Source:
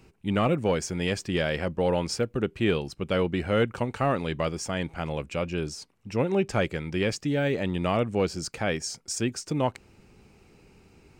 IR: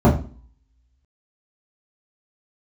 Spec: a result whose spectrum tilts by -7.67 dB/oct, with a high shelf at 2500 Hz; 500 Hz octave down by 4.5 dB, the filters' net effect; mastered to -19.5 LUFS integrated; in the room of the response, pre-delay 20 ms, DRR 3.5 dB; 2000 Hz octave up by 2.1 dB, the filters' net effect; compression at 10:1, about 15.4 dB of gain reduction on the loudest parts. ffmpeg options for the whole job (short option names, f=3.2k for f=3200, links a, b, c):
-filter_complex "[0:a]equalizer=f=500:t=o:g=-5.5,equalizer=f=2k:t=o:g=5,highshelf=f=2.5k:g=-4.5,acompressor=threshold=-38dB:ratio=10,asplit=2[a][b];[1:a]atrim=start_sample=2205,adelay=20[c];[b][c]afir=irnorm=-1:irlink=0,volume=-26dB[d];[a][d]amix=inputs=2:normalize=0,volume=14.5dB"